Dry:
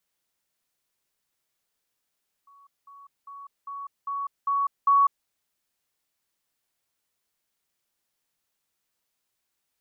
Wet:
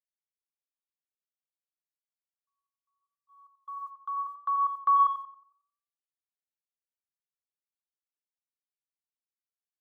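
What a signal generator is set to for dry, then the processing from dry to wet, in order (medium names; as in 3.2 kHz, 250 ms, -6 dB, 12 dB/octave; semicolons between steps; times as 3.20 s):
level ladder 1.12 kHz -51.5 dBFS, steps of 6 dB, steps 7, 0.20 s 0.20 s
gate -41 dBFS, range -33 dB; peaking EQ 900 Hz -7.5 dB 0.37 oct; on a send: tape echo 89 ms, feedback 52%, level -6 dB, low-pass 1.1 kHz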